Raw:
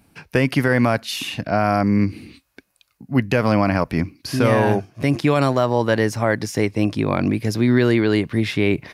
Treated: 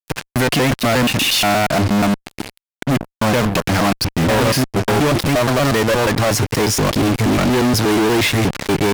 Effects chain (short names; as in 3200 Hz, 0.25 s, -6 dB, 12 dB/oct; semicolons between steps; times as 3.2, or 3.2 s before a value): slices in reverse order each 0.119 s, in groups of 3; fuzz box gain 40 dB, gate -34 dBFS